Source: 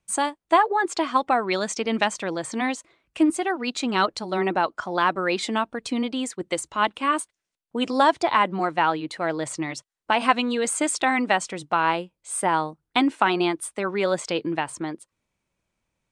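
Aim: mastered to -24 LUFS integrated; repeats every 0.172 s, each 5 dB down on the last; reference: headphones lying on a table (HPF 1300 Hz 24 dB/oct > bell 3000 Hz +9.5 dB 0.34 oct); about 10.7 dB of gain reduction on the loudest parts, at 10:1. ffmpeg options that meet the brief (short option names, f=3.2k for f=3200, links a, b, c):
-af "acompressor=threshold=-24dB:ratio=10,highpass=f=1.3k:w=0.5412,highpass=f=1.3k:w=1.3066,equalizer=f=3k:t=o:w=0.34:g=9.5,aecho=1:1:172|344|516|688|860|1032|1204:0.562|0.315|0.176|0.0988|0.0553|0.031|0.0173,volume=7dB"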